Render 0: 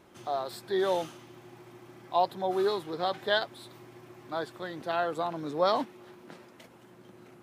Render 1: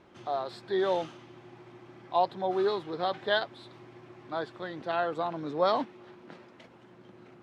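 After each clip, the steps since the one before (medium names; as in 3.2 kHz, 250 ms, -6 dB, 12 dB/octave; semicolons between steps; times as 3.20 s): low-pass 4.4 kHz 12 dB/octave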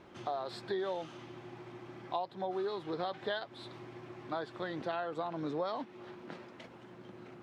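compression 8:1, threshold -35 dBFS, peak gain reduction 15 dB; trim +2 dB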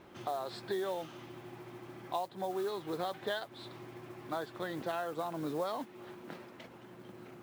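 modulation noise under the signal 22 dB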